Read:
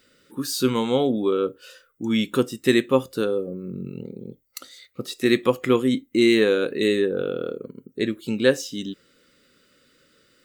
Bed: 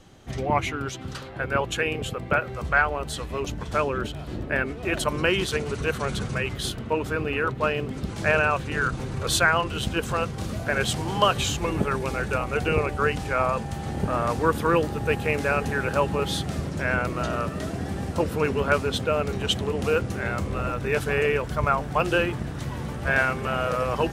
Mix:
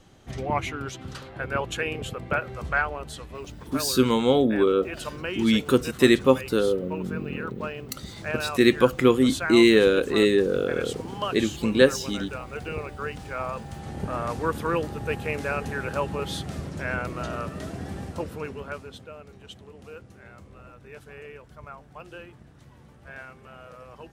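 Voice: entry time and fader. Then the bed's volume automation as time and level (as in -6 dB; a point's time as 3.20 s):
3.35 s, +1.0 dB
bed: 2.70 s -3 dB
3.47 s -9.5 dB
13.03 s -9.5 dB
14.15 s -4.5 dB
17.97 s -4.5 dB
19.21 s -20 dB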